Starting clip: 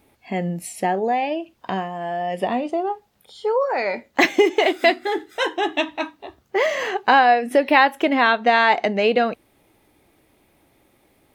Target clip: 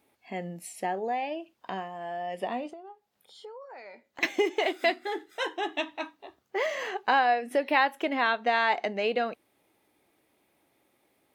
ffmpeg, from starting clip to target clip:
ffmpeg -i in.wav -filter_complex "[0:a]highpass=frequency=270:poles=1,asettb=1/sr,asplit=3[link_01][link_02][link_03];[link_01]atrim=end=2.704[link_04];[link_02]atrim=start=2.7:end=4.23,asetpts=PTS-STARTPTS,afade=type=in:duration=0.004:curve=qsin,afade=type=out:start_time=1.526:duration=0.004:curve=qsin,acompressor=threshold=-36dB:ratio=5[link_05];[link_03]atrim=start=4.226[link_06];[link_04][link_05]acrossfade=duration=0.004:curve1=hsin:curve2=qsin[link_07];[link_07][link_06]acrossfade=duration=0.004:curve1=qsin:curve2=hsin,volume=-8.5dB" out.wav

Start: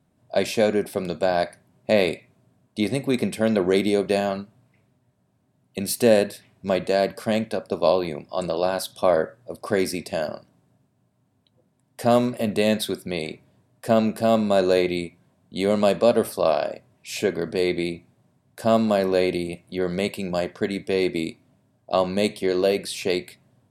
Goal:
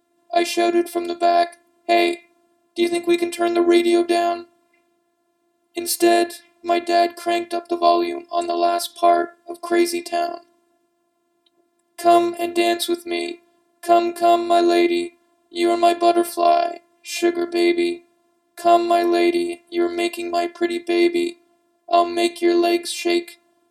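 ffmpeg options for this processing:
ffmpeg -i in.wav -af "afftfilt=real='hypot(re,im)*cos(PI*b)':imag='0':win_size=512:overlap=0.75,highpass=190,volume=8dB" out.wav

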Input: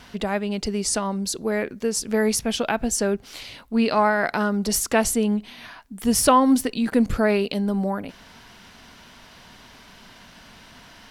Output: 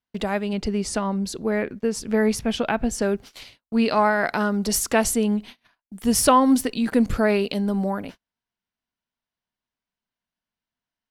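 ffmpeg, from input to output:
ffmpeg -i in.wav -filter_complex "[0:a]agate=range=-44dB:threshold=-37dB:ratio=16:detection=peak,asettb=1/sr,asplit=3[link_01][link_02][link_03];[link_01]atrim=end=0.534[link_04];[link_02]atrim=start=0.53:end=3.02,asetpts=PTS-STARTPTS,afade=type=in:duration=0.004:curve=qsin,afade=type=out:start_time=2.486:duration=0.004:curve=qsin,bass=frequency=250:gain=3,treble=frequency=4000:gain=-8[link_05];[link_03]atrim=start=3.016[link_06];[link_04][link_05]acrossfade=duration=0.004:curve1=hsin:curve2=qsin[link_07];[link_07][link_06]acrossfade=duration=0.004:curve1=qsin:curve2=hsin" out.wav

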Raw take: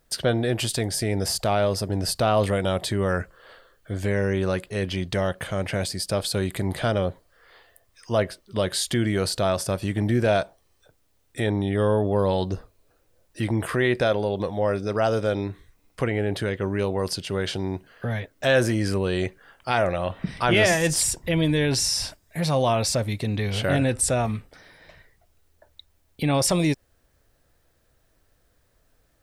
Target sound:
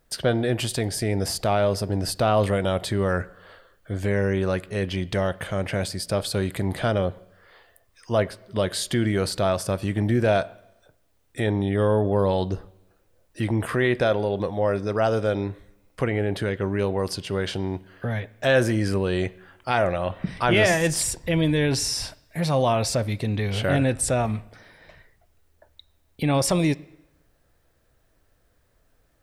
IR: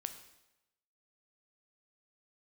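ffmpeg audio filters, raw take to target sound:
-filter_complex "[0:a]asplit=2[link_01][link_02];[1:a]atrim=start_sample=2205,lowpass=3600[link_03];[link_02][link_03]afir=irnorm=-1:irlink=0,volume=-7dB[link_04];[link_01][link_04]amix=inputs=2:normalize=0,volume=-2dB"

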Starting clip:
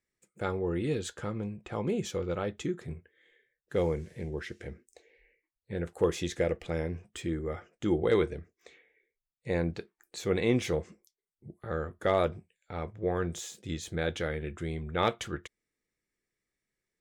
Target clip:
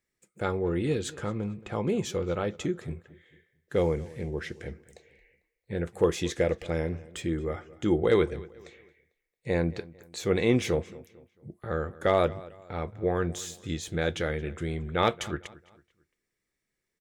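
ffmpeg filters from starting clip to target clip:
ffmpeg -i in.wav -filter_complex "[0:a]asplit=2[link_01][link_02];[link_02]adelay=224,lowpass=frequency=4700:poles=1,volume=-20dB,asplit=2[link_03][link_04];[link_04]adelay=224,lowpass=frequency=4700:poles=1,volume=0.39,asplit=2[link_05][link_06];[link_06]adelay=224,lowpass=frequency=4700:poles=1,volume=0.39[link_07];[link_01][link_03][link_05][link_07]amix=inputs=4:normalize=0,volume=3dB" out.wav

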